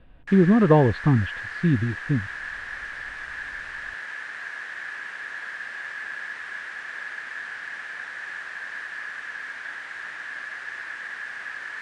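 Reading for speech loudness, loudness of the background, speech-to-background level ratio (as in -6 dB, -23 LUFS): -21.0 LUFS, -33.5 LUFS, 12.5 dB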